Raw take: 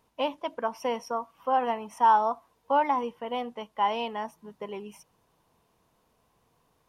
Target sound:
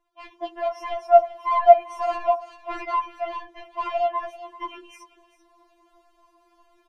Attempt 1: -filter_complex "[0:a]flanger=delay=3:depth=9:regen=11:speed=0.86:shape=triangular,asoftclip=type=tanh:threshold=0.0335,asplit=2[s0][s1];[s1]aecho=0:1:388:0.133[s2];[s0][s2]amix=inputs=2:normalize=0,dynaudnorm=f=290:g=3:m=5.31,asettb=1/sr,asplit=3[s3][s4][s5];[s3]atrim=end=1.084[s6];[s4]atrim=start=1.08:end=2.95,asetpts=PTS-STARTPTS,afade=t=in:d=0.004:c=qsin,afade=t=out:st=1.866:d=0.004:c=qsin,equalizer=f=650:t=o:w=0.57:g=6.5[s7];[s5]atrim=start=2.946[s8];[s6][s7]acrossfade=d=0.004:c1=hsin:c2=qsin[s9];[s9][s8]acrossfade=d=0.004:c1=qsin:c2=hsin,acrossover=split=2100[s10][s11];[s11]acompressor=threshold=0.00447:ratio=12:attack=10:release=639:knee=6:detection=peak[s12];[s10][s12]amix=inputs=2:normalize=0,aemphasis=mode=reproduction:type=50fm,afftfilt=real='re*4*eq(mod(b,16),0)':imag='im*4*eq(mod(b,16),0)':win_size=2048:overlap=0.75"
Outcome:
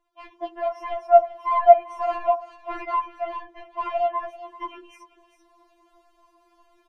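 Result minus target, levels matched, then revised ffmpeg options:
compression: peak gain reduction +8.5 dB
-filter_complex "[0:a]flanger=delay=3:depth=9:regen=11:speed=0.86:shape=triangular,asoftclip=type=tanh:threshold=0.0335,asplit=2[s0][s1];[s1]aecho=0:1:388:0.133[s2];[s0][s2]amix=inputs=2:normalize=0,dynaudnorm=f=290:g=3:m=5.31,asettb=1/sr,asplit=3[s3][s4][s5];[s3]atrim=end=1.084[s6];[s4]atrim=start=1.08:end=2.95,asetpts=PTS-STARTPTS,afade=t=in:d=0.004:c=qsin,afade=t=out:st=1.866:d=0.004:c=qsin,equalizer=f=650:t=o:w=0.57:g=6.5[s7];[s5]atrim=start=2.946[s8];[s6][s7]acrossfade=d=0.004:c1=hsin:c2=qsin[s9];[s9][s8]acrossfade=d=0.004:c1=qsin:c2=hsin,acrossover=split=2100[s10][s11];[s11]acompressor=threshold=0.0133:ratio=12:attack=10:release=639:knee=6:detection=peak[s12];[s10][s12]amix=inputs=2:normalize=0,aemphasis=mode=reproduction:type=50fm,afftfilt=real='re*4*eq(mod(b,16),0)':imag='im*4*eq(mod(b,16),0)':win_size=2048:overlap=0.75"

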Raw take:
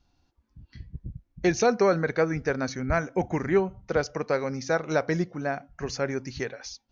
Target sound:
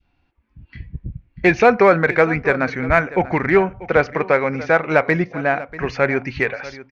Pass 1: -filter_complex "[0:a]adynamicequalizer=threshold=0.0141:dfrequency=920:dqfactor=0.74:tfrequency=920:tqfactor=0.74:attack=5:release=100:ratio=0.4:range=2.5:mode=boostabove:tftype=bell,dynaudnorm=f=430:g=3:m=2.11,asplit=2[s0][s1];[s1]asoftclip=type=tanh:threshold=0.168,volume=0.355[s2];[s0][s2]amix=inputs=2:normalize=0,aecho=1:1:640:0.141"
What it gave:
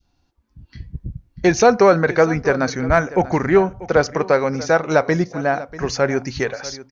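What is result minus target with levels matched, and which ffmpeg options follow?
2 kHz band -4.0 dB
-filter_complex "[0:a]adynamicequalizer=threshold=0.0141:dfrequency=920:dqfactor=0.74:tfrequency=920:tqfactor=0.74:attack=5:release=100:ratio=0.4:range=2.5:mode=boostabove:tftype=bell,lowpass=f=2400:t=q:w=2.9,dynaudnorm=f=430:g=3:m=2.11,asplit=2[s0][s1];[s1]asoftclip=type=tanh:threshold=0.168,volume=0.355[s2];[s0][s2]amix=inputs=2:normalize=0,aecho=1:1:640:0.141"

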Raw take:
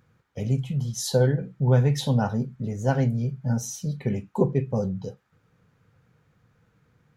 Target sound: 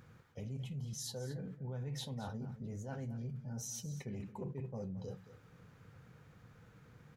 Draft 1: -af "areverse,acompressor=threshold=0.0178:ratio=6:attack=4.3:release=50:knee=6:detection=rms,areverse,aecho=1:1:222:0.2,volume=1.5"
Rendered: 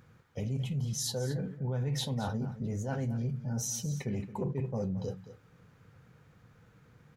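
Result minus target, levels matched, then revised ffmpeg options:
compression: peak gain reduction -9 dB
-af "areverse,acompressor=threshold=0.00501:ratio=6:attack=4.3:release=50:knee=6:detection=rms,areverse,aecho=1:1:222:0.2,volume=1.5"

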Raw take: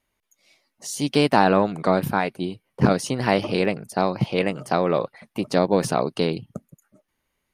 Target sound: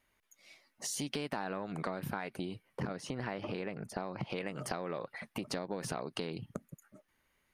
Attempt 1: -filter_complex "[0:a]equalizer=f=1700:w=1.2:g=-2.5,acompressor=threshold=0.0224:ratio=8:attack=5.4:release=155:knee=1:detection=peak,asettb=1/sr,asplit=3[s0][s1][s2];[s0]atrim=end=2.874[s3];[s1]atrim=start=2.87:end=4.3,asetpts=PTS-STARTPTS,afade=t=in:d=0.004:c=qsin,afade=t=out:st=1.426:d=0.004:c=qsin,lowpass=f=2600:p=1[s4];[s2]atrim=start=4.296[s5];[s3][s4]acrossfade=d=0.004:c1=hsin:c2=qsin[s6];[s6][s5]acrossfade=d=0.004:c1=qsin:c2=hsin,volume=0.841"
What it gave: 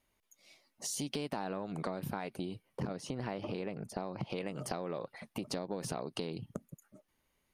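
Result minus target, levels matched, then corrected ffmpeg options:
2 kHz band -4.5 dB
-filter_complex "[0:a]equalizer=f=1700:w=1.2:g=5,acompressor=threshold=0.0224:ratio=8:attack=5.4:release=155:knee=1:detection=peak,asettb=1/sr,asplit=3[s0][s1][s2];[s0]atrim=end=2.874[s3];[s1]atrim=start=2.87:end=4.3,asetpts=PTS-STARTPTS,afade=t=in:d=0.004:c=qsin,afade=t=out:st=1.426:d=0.004:c=qsin,lowpass=f=2600:p=1[s4];[s2]atrim=start=4.296[s5];[s3][s4]acrossfade=d=0.004:c1=hsin:c2=qsin[s6];[s6][s5]acrossfade=d=0.004:c1=qsin:c2=hsin,volume=0.841"

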